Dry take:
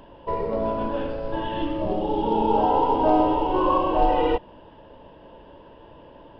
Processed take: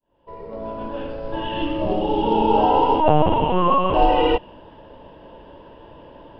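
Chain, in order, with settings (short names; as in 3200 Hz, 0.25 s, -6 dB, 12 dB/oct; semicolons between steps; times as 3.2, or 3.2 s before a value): opening faded in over 1.90 s; dynamic EQ 2800 Hz, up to +8 dB, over -56 dBFS, Q 5.2; 3–3.94 LPC vocoder at 8 kHz pitch kept; gain +3.5 dB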